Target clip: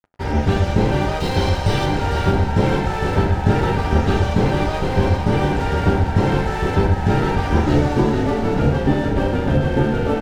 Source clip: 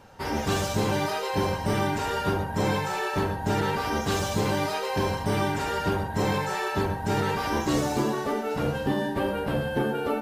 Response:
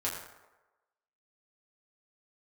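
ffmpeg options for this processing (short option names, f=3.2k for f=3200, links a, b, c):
-filter_complex "[0:a]lowpass=11k,aemphasis=mode=reproduction:type=bsi,bandreject=f=50:t=h:w=6,bandreject=f=100:t=h:w=6,bandreject=f=150:t=h:w=6,bandreject=f=200:t=h:w=6,bandreject=f=250:t=h:w=6,bandreject=f=300:t=h:w=6,acrossover=split=4600[a][b];[b]acompressor=threshold=-52dB:ratio=4:attack=1:release=60[c];[a][c]amix=inputs=2:normalize=0,asettb=1/sr,asplit=3[d][e][f];[d]atrim=end=1.204[g];[e]atrim=start=1.2:end=1.86,asetpts=PTS-STARTPTS,afade=t=in:d=0.004:c=qsin,afade=t=out:st=0.656:d=0.004:c=qsin,equalizer=f=250:t=o:w=1:g=-9,equalizer=f=4k:t=o:w=1:g=10,equalizer=f=8k:t=o:w=1:g=8[h];[f]atrim=start=1.856[i];[g][h]acrossfade=d=0.004:c1=hsin:c2=qsin[j];[j][i]acrossfade=d=0.004:c1=qsin:c2=hsin,aeval=exprs='sgn(val(0))*max(abs(val(0))-0.0126,0)':c=same,asuperstop=centerf=1100:order=4:qfactor=7.3,asplit=8[k][l][m][n][o][p][q][r];[l]adelay=456,afreqshift=-32,volume=-6.5dB[s];[m]adelay=912,afreqshift=-64,volume=-12dB[t];[n]adelay=1368,afreqshift=-96,volume=-17.5dB[u];[o]adelay=1824,afreqshift=-128,volume=-23dB[v];[p]adelay=2280,afreqshift=-160,volume=-28.6dB[w];[q]adelay=2736,afreqshift=-192,volume=-34.1dB[x];[r]adelay=3192,afreqshift=-224,volume=-39.6dB[y];[k][s][t][u][v][w][x][y]amix=inputs=8:normalize=0,asplit=2[z][aa];[1:a]atrim=start_sample=2205,atrim=end_sample=3528[ab];[aa][ab]afir=irnorm=-1:irlink=0,volume=-19dB[ac];[z][ac]amix=inputs=2:normalize=0,volume=5dB"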